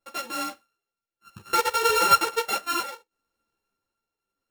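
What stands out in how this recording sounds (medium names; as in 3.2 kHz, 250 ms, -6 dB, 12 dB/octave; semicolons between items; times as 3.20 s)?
a buzz of ramps at a fixed pitch in blocks of 32 samples; tremolo triangle 0.66 Hz, depth 55%; a shimmering, thickened sound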